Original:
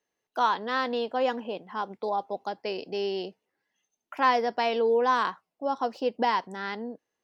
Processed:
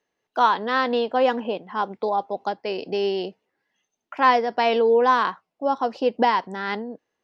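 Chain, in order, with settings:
Bessel low-pass filter 4,600 Hz
amplitude modulation by smooth noise, depth 55%
level +8.5 dB

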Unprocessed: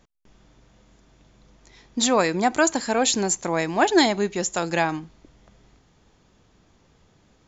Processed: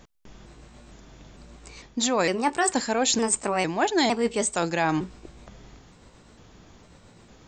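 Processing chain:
pitch shifter gated in a rhythm +2.5 semitones, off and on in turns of 455 ms
reversed playback
downward compressor 4 to 1, threshold −30 dBFS, peak gain reduction 14.5 dB
reversed playback
level +8 dB

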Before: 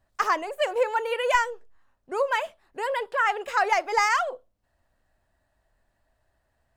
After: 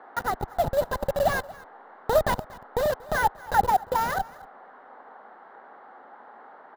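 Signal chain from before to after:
hold until the input has moved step −21.5 dBFS
source passing by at 0:02.26, 8 m/s, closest 6.6 metres
pitch shifter +2 semitones
spectral tilt −3 dB per octave
notch comb filter 1,100 Hz
on a send: single-tap delay 234 ms −23.5 dB
on the sum: sample-rate reduction 12,000 Hz, jitter 0%
in parallel at +2 dB: downward compressor, threshold −36 dBFS, peak gain reduction 15 dB
on the sum: noise in a band 250–1,600 Hz −52 dBFS
thirty-one-band graphic EQ 315 Hz −8 dB, 800 Hz +9 dB, 2,500 Hz −12 dB, 4,000 Hz +5 dB, 10,000 Hz −6 dB
level +1.5 dB

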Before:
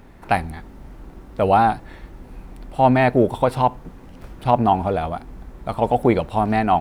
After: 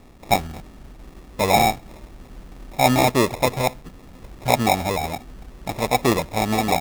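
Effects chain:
low-pass filter 8,200 Hz 12 dB per octave
high-shelf EQ 2,900 Hz +11.5 dB
decimation without filtering 29×
level −2.5 dB

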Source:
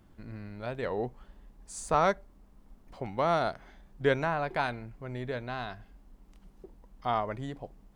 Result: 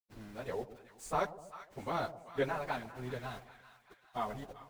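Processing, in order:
centre clipping without the shift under −43 dBFS
echo with a time of its own for lows and highs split 910 Hz, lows 204 ms, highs 663 ms, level −14 dB
time stretch by phase vocoder 0.59×
level −3 dB

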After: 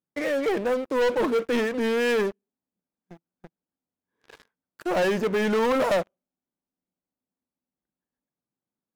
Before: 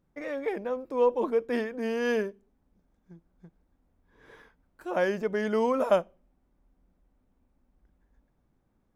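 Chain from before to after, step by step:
Chebyshev high-pass filter 170 Hz, order 2
low-shelf EQ 490 Hz −3 dB
leveller curve on the samples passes 5
level −6 dB

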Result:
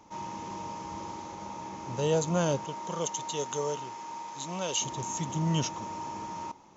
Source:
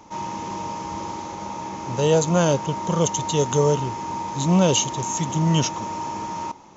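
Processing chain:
0:02.64–0:04.80: high-pass filter 370 Hz → 1,000 Hz 6 dB per octave
level −8.5 dB

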